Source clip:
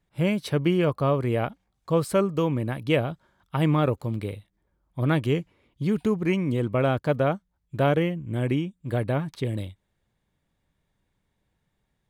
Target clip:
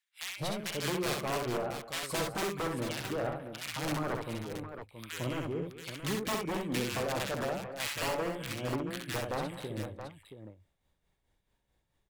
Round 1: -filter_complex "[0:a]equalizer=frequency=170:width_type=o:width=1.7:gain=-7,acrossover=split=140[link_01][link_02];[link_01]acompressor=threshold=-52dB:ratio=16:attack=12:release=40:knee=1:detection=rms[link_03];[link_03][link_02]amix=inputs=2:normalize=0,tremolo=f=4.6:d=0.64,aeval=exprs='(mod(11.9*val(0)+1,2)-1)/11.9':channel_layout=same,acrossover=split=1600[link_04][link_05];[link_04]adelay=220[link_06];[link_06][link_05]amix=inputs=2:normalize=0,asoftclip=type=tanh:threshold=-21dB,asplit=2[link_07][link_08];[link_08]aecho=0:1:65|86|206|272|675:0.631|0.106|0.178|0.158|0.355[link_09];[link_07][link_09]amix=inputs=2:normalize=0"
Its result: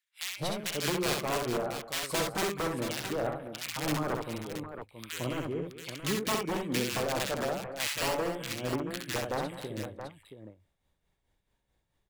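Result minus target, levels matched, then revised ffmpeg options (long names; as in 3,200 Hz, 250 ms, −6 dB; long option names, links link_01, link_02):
downward compressor: peak gain reduction +6 dB; soft clipping: distortion −7 dB
-filter_complex "[0:a]equalizer=frequency=170:width_type=o:width=1.7:gain=-7,acrossover=split=140[link_01][link_02];[link_01]acompressor=threshold=-45.5dB:ratio=16:attack=12:release=40:knee=1:detection=rms[link_03];[link_03][link_02]amix=inputs=2:normalize=0,tremolo=f=4.6:d=0.64,aeval=exprs='(mod(11.9*val(0)+1,2)-1)/11.9':channel_layout=same,acrossover=split=1600[link_04][link_05];[link_04]adelay=220[link_06];[link_06][link_05]amix=inputs=2:normalize=0,asoftclip=type=tanh:threshold=-28.5dB,asplit=2[link_07][link_08];[link_08]aecho=0:1:65|86|206|272|675:0.631|0.106|0.178|0.158|0.355[link_09];[link_07][link_09]amix=inputs=2:normalize=0"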